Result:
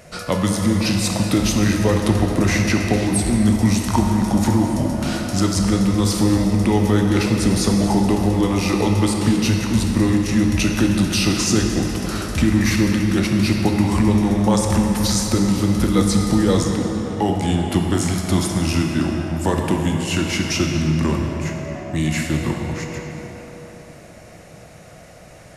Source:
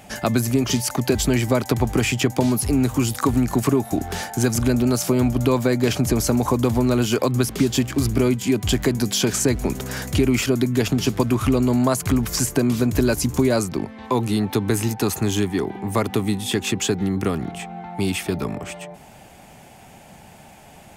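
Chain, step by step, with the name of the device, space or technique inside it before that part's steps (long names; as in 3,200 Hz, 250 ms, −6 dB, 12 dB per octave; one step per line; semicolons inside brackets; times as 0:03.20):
slowed and reverbed (speed change −18%; convolution reverb RT60 3.8 s, pre-delay 15 ms, DRR 1 dB)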